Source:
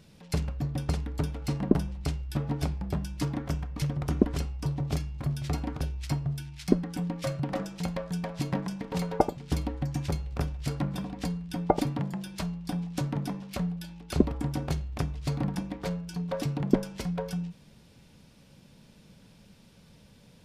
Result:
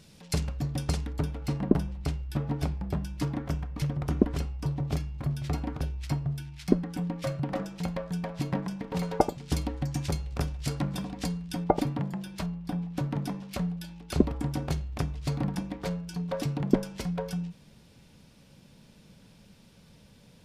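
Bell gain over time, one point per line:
bell 7800 Hz 2.3 oct
+6.5 dB
from 1.13 s -3.5 dB
from 9.03 s +5 dB
from 11.64 s -3.5 dB
from 12.46 s -9.5 dB
from 13.11 s +0.5 dB

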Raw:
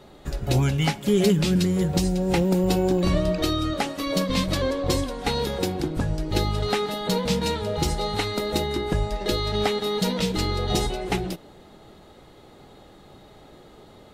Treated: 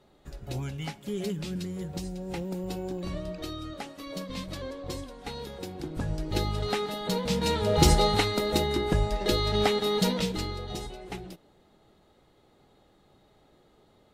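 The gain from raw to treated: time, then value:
5.67 s -13 dB
6.1 s -5 dB
7.28 s -5 dB
7.92 s +6 dB
8.32 s -1 dB
10.05 s -1 dB
10.74 s -13 dB

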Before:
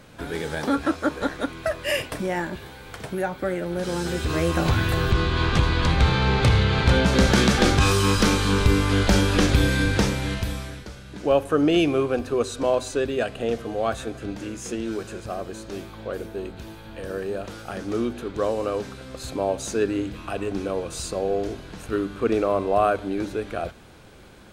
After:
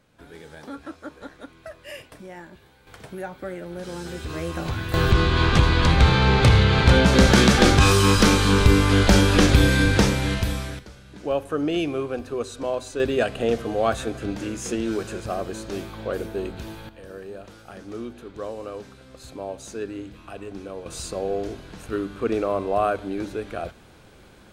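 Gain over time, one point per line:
-14 dB
from 2.87 s -7 dB
from 4.94 s +3 dB
from 10.79 s -5 dB
from 13 s +3 dB
from 16.89 s -8.5 dB
from 20.86 s -2 dB

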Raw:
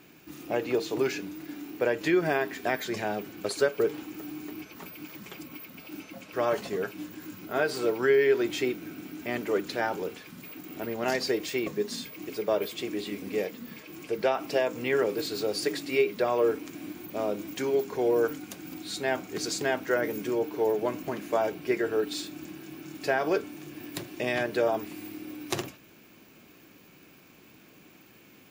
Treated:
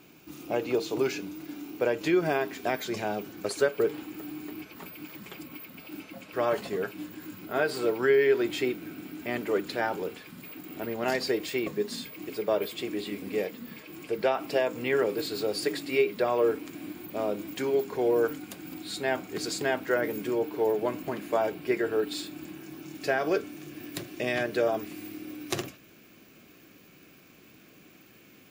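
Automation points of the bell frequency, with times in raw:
bell -7.5 dB 0.24 oct
3.23 s 1800 Hz
3.68 s 6000 Hz
22.52 s 6000 Hz
23.02 s 910 Hz

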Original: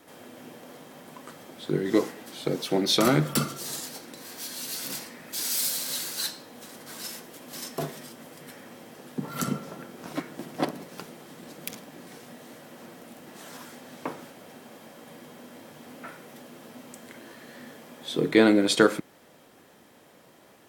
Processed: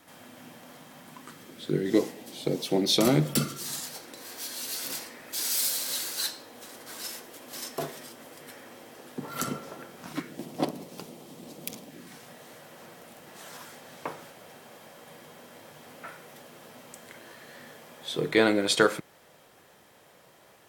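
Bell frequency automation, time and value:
bell -9 dB 0.94 oct
0.99 s 410 Hz
2.1 s 1400 Hz
3.27 s 1400 Hz
4.12 s 180 Hz
9.82 s 180 Hz
10.46 s 1600 Hz
11.82 s 1600 Hz
12.26 s 260 Hz

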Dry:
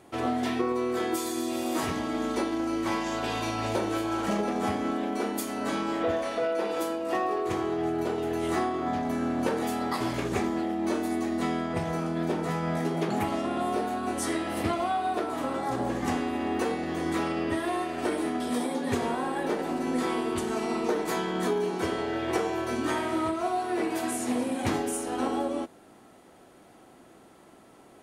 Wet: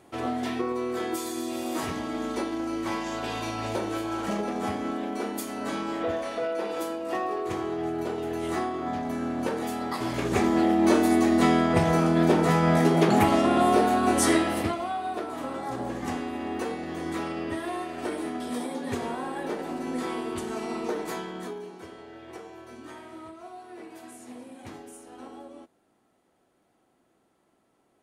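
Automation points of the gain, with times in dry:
9.99 s -1.5 dB
10.65 s +8 dB
14.37 s +8 dB
14.79 s -3 dB
21.05 s -3 dB
21.87 s -15 dB

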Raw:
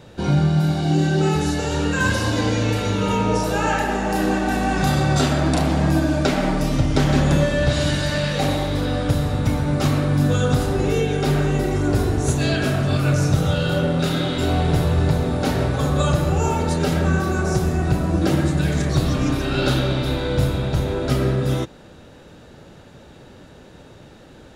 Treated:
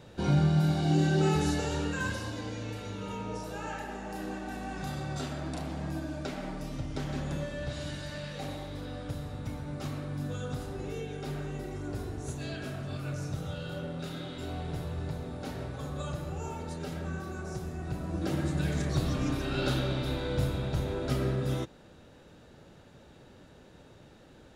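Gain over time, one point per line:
1.53 s -7 dB
2.41 s -17.5 dB
17.76 s -17.5 dB
18.61 s -10 dB

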